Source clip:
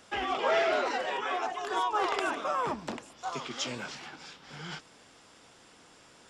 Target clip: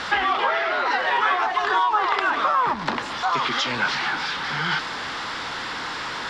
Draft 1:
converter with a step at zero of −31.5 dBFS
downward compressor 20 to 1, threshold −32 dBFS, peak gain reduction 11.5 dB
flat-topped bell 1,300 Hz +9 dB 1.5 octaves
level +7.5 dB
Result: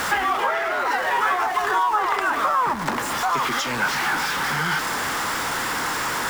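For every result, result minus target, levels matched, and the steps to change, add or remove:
converter with a step at zero: distortion +6 dB; 4,000 Hz band −2.5 dB
change: converter with a step at zero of −38.5 dBFS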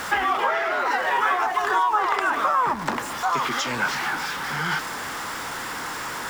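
4,000 Hz band −4.0 dB
add after downward compressor: low-pass with resonance 4,100 Hz, resonance Q 2.1

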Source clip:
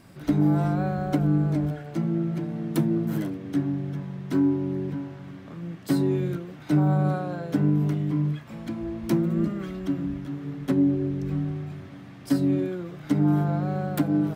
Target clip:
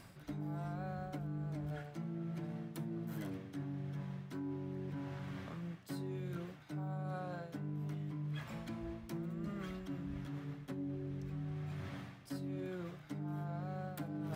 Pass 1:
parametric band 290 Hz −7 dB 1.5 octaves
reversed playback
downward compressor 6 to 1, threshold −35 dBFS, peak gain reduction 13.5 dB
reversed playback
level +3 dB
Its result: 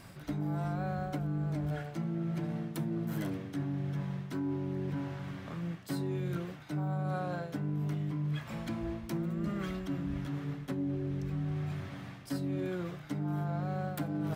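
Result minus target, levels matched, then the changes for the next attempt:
downward compressor: peak gain reduction −7.5 dB
change: downward compressor 6 to 1, threshold −44 dBFS, peak gain reduction 21 dB

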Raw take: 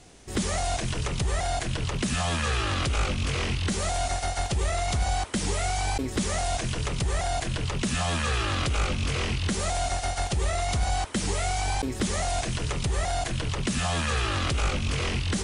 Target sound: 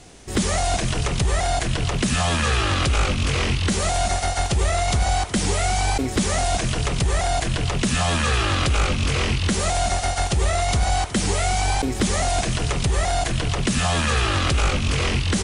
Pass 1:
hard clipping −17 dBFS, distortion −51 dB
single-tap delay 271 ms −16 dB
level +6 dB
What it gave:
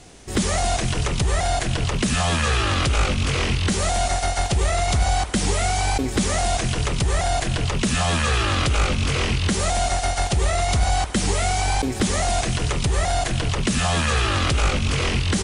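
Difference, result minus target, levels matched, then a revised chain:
echo 97 ms early
hard clipping −17 dBFS, distortion −51 dB
single-tap delay 368 ms −16 dB
level +6 dB

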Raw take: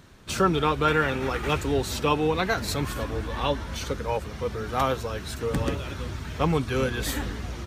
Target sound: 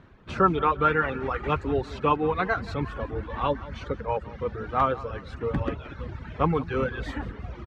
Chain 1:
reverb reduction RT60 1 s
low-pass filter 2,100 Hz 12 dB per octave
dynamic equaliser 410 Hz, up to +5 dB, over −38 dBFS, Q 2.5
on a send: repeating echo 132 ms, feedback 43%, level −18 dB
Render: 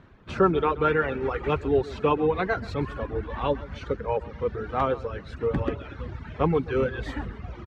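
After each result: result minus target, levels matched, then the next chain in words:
echo 45 ms early; 1,000 Hz band −3.0 dB
reverb reduction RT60 1 s
low-pass filter 2,100 Hz 12 dB per octave
dynamic equaliser 410 Hz, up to +5 dB, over −38 dBFS, Q 2.5
on a send: repeating echo 177 ms, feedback 43%, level −18 dB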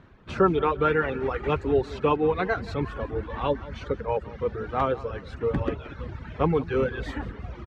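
1,000 Hz band −3.0 dB
reverb reduction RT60 1 s
low-pass filter 2,100 Hz 12 dB per octave
dynamic equaliser 1,200 Hz, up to +5 dB, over −38 dBFS, Q 2.5
on a send: repeating echo 177 ms, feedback 43%, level −18 dB

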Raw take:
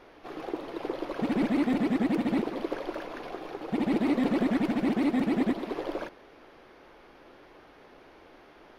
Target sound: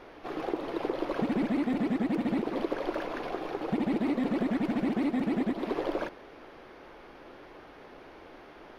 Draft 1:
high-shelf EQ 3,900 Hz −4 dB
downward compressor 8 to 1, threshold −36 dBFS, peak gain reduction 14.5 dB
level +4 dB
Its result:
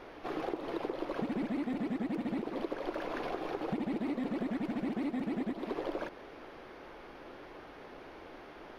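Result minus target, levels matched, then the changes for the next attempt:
downward compressor: peak gain reduction +6 dB
change: downward compressor 8 to 1, threshold −29 dBFS, peak gain reduction 8 dB

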